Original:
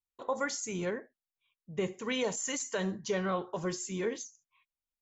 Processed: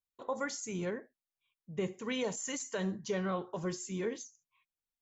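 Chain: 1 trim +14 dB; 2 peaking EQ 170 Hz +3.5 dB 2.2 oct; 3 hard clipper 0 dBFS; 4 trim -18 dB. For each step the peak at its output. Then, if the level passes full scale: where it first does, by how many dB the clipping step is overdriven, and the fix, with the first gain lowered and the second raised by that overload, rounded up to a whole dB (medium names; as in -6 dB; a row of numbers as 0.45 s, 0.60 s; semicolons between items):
-7.0 dBFS, -6.0 dBFS, -6.0 dBFS, -24.0 dBFS; nothing clips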